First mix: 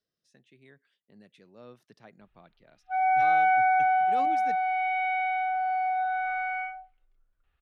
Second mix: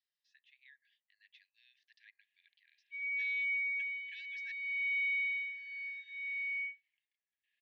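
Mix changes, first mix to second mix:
speech: add low-pass filter 4,400 Hz 24 dB per octave
master: add linear-phase brick-wall high-pass 1,600 Hz

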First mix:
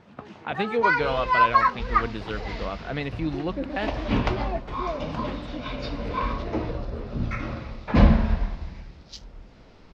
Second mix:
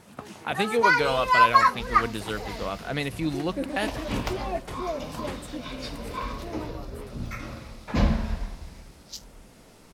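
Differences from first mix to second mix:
first sound: remove low-pass filter 9,100 Hz 12 dB per octave
second sound −6.5 dB
master: remove high-frequency loss of the air 210 metres

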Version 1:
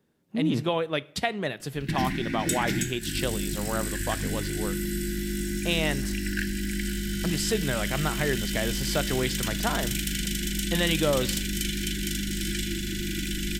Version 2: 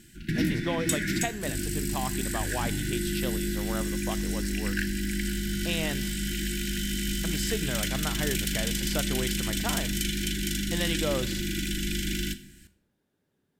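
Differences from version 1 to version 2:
speech −5.0 dB
background: entry −1.60 s

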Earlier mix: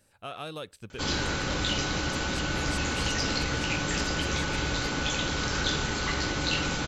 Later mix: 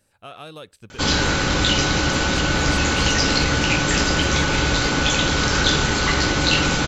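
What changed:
background +11.5 dB
reverb: off

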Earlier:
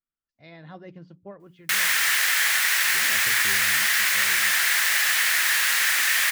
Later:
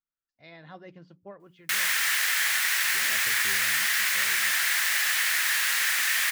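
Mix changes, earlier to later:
background −3.5 dB
master: add low-shelf EQ 400 Hz −7 dB

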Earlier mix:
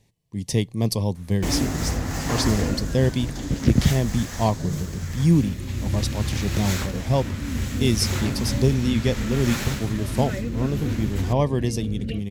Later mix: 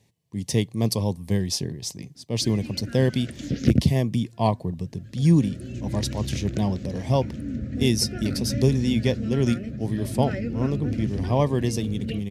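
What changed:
first sound: muted
master: add high-pass filter 81 Hz

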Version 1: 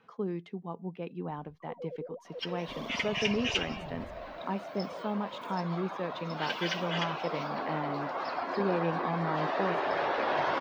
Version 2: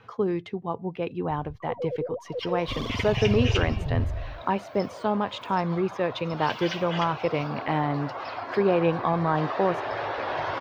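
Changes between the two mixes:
speech +10.5 dB
first sound +11.0 dB
master: add low shelf with overshoot 140 Hz +7.5 dB, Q 3

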